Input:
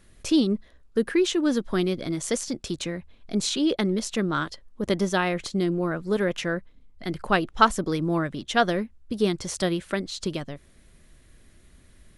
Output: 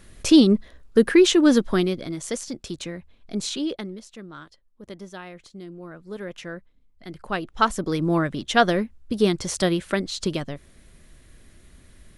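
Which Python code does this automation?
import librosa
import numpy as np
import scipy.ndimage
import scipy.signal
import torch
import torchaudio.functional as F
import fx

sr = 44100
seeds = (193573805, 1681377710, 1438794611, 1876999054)

y = fx.gain(x, sr, db=fx.line((1.58, 7.0), (2.1, -2.5), (3.6, -2.5), (4.06, -15.0), (5.66, -15.0), (6.46, -8.0), (7.12, -8.0), (8.11, 3.5)))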